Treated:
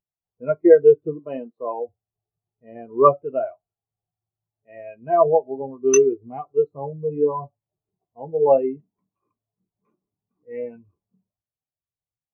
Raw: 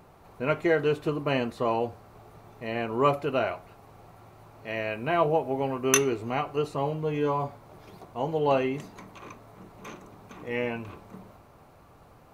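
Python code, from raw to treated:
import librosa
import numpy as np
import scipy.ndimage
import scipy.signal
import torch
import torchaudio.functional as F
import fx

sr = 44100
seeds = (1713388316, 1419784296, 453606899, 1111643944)

y = fx.highpass(x, sr, hz=220.0, slope=6, at=(1.19, 1.89))
y = fx.spectral_expand(y, sr, expansion=2.5)
y = y * 10.0 ** (3.0 / 20.0)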